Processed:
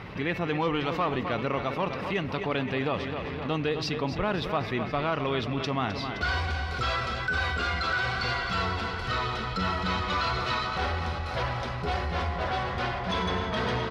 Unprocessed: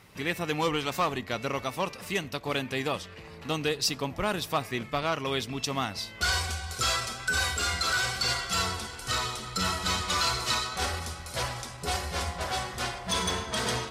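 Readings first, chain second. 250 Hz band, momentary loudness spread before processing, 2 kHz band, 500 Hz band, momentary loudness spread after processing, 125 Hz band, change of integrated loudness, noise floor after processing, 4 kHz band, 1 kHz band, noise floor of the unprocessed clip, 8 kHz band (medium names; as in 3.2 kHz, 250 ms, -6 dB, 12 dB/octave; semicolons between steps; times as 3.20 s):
+4.0 dB, 7 LU, +1.0 dB, +2.5 dB, 3 LU, +4.5 dB, +0.5 dB, -34 dBFS, -4.5 dB, +2.0 dB, -45 dBFS, -17.5 dB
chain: distance through air 310 m; feedback delay 260 ms, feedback 58%, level -12 dB; level flattener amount 50%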